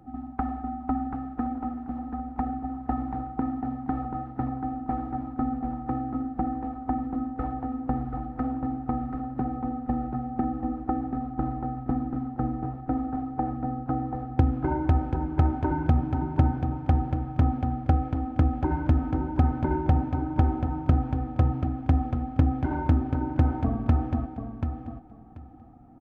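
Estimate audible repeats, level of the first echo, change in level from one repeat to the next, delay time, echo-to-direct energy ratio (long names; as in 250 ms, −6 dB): 2, −7.5 dB, −15.0 dB, 735 ms, −7.5 dB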